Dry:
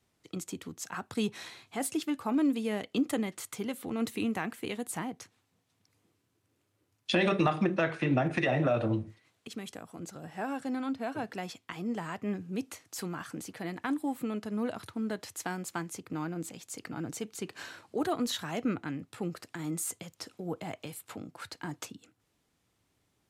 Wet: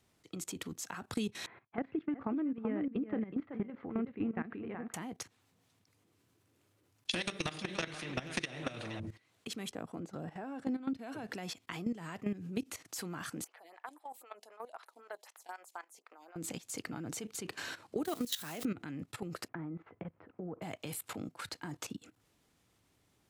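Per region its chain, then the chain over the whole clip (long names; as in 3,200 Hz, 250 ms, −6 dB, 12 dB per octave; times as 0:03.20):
0:01.46–0:04.94: downward expander −47 dBFS + inverse Chebyshev low-pass filter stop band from 9,500 Hz, stop band 80 dB + single-tap delay 377 ms −6.5 dB
0:07.11–0:09.00: single-tap delay 476 ms −13 dB + every bin compressed towards the loudest bin 2 to 1
0:09.71–0:10.94: high-pass filter 420 Hz 6 dB per octave + spectral tilt −3.5 dB per octave
0:13.44–0:16.36: four-pole ladder high-pass 570 Hz, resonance 30% + phaser with staggered stages 3.9 Hz
0:18.05–0:18.65: spike at every zero crossing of −33 dBFS + low-shelf EQ 190 Hz −7 dB
0:19.48–0:20.62: Bessel low-pass filter 1,300 Hz, order 6 + downward compressor 2.5 to 1, threshold −43 dBFS
whole clip: output level in coarse steps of 16 dB; dynamic equaliser 930 Hz, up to −8 dB, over −51 dBFS, Q 0.83; downward compressor 6 to 1, threshold −39 dBFS; level +7 dB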